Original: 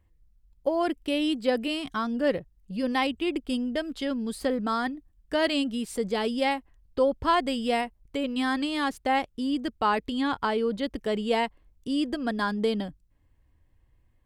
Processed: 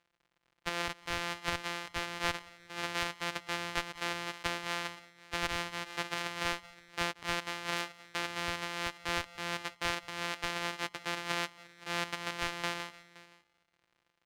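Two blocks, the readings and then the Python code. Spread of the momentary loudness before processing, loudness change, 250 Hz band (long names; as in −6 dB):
7 LU, −8.0 dB, −18.5 dB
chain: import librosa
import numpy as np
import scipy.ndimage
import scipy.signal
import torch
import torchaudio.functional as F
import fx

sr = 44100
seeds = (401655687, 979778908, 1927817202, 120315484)

p1 = np.r_[np.sort(x[:len(x) // 256 * 256].reshape(-1, 256), axis=1).ravel(), x[len(x) // 256 * 256:]]
p2 = fx.bandpass_q(p1, sr, hz=2500.0, q=0.74)
p3 = p2 + 10.0 ** (-21.0 / 20.0) * np.pad(p2, (int(520 * sr / 1000.0), 0))[:len(p2)]
p4 = fx.schmitt(p3, sr, flips_db=-32.0)
p5 = p3 + (p4 * 10.0 ** (-5.0 / 20.0))
p6 = fx.rider(p5, sr, range_db=3, speed_s=0.5)
y = p6 + fx.echo_feedback(p6, sr, ms=179, feedback_pct=43, wet_db=-23.5, dry=0)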